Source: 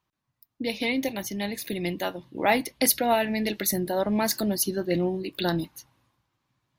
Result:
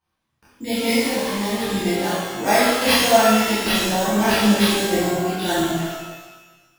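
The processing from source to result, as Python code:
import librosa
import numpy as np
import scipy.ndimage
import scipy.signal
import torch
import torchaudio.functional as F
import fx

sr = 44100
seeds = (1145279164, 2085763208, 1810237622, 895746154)

y = np.repeat(x[::6], 6)[:len(x)]
y = fx.chorus_voices(y, sr, voices=2, hz=1.3, base_ms=25, depth_ms=3.2, mix_pct=50)
y = fx.rev_shimmer(y, sr, seeds[0], rt60_s=1.2, semitones=12, shimmer_db=-8, drr_db=-9.5)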